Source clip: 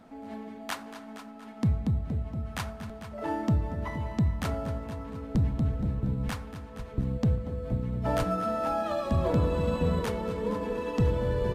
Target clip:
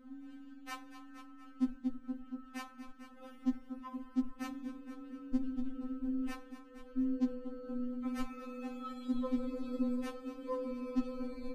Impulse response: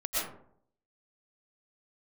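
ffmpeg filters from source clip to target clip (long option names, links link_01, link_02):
-af "bass=frequency=250:gain=15,treble=frequency=4000:gain=-4,afftfilt=real='re*3.46*eq(mod(b,12),0)':imag='im*3.46*eq(mod(b,12),0)':win_size=2048:overlap=0.75,volume=-7dB"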